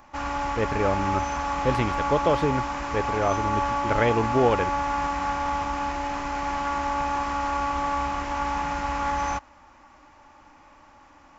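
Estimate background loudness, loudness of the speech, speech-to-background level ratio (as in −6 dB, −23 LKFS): −27.5 LKFS, −27.0 LKFS, 0.5 dB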